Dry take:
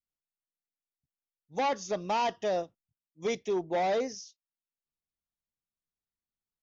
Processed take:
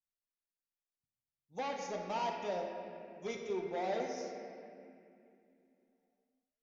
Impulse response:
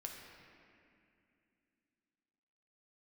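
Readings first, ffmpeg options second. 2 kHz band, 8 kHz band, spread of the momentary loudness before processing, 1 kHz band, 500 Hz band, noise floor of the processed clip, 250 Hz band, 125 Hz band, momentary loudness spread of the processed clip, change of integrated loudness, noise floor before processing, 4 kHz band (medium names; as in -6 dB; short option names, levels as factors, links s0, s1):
-6.5 dB, no reading, 12 LU, -7.5 dB, -7.0 dB, under -85 dBFS, -6.5 dB, -6.5 dB, 14 LU, -8.0 dB, under -85 dBFS, -8.0 dB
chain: -filter_complex "[1:a]atrim=start_sample=2205[s0];[0:a][s0]afir=irnorm=-1:irlink=0,volume=0.596"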